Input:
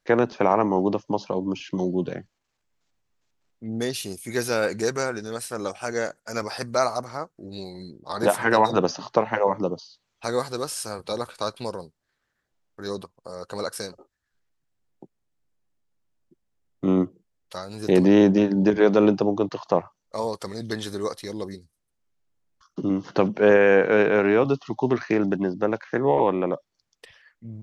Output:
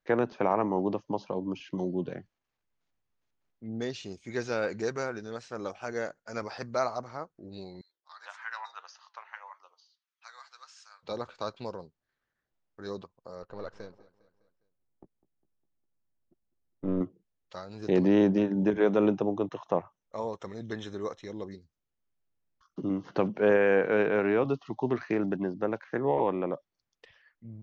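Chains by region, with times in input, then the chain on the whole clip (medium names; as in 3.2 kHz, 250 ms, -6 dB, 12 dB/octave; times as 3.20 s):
7.81–11.03 s: high-pass 1.2 kHz 24 dB/octave + peaking EQ 2.9 kHz -3.5 dB 2.5 oct + flange 1.7 Hz, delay 4.4 ms, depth 3.3 ms, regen +87%
13.42–17.01 s: partial rectifier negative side -7 dB + low-pass 1.5 kHz 6 dB/octave + feedback delay 203 ms, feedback 52%, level -20 dB
18.43–21.52 s: short-mantissa float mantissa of 6-bit + Butterworth band-stop 4.6 kHz, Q 4
whole clip: elliptic low-pass 6.9 kHz, stop band 50 dB; treble shelf 4.6 kHz -10.5 dB; trim -5.5 dB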